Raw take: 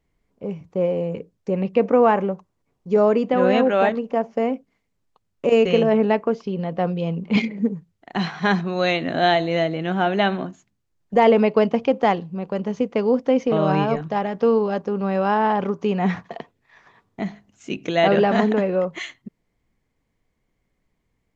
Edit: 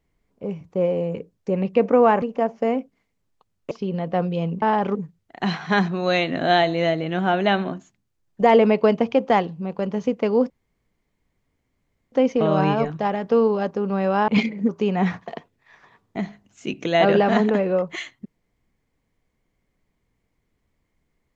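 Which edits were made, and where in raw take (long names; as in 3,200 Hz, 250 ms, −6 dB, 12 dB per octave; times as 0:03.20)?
0:02.22–0:03.97: remove
0:05.46–0:06.36: remove
0:07.27–0:07.68: swap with 0:15.39–0:15.72
0:13.23: splice in room tone 1.62 s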